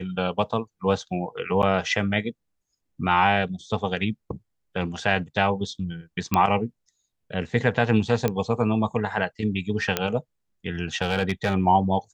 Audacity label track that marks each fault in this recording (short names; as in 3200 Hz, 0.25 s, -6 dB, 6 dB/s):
1.620000	1.630000	gap 8.4 ms
6.340000	6.340000	pop -7 dBFS
8.280000	8.280000	pop -10 dBFS
9.970000	9.970000	pop -6 dBFS
11.020000	11.540000	clipped -16 dBFS